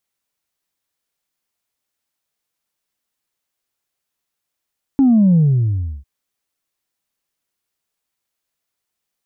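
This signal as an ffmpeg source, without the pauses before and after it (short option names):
-f lavfi -i "aevalsrc='0.355*clip((1.05-t)/0.69,0,1)*tanh(1*sin(2*PI*280*1.05/log(65/280)*(exp(log(65/280)*t/1.05)-1)))/tanh(1)':d=1.05:s=44100"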